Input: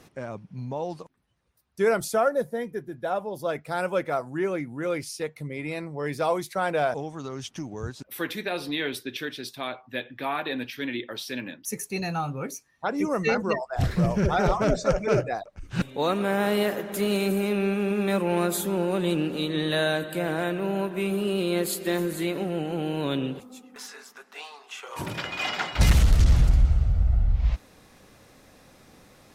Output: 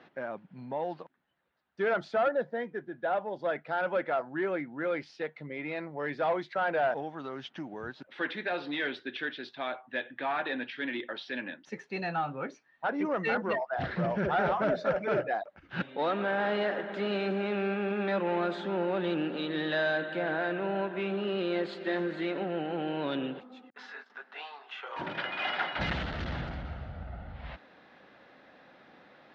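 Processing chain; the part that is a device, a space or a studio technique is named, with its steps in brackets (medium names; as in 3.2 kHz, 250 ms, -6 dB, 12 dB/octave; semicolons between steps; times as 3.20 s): 23.70–24.10 s: gate -45 dBFS, range -40 dB; overdrive pedal into a guitar cabinet (overdrive pedal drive 16 dB, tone 1.9 kHz, clips at -10.5 dBFS; cabinet simulation 100–3800 Hz, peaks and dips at 110 Hz -9 dB, 440 Hz -4 dB, 1.1 kHz -5 dB, 1.6 kHz +3 dB, 2.4 kHz -4 dB); trim -6.5 dB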